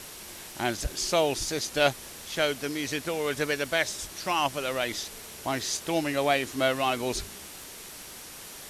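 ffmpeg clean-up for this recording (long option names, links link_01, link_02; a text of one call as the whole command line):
ffmpeg -i in.wav -af "adeclick=threshold=4,bandreject=frequency=5700:width=30,afftdn=noise_reduction=30:noise_floor=-44" out.wav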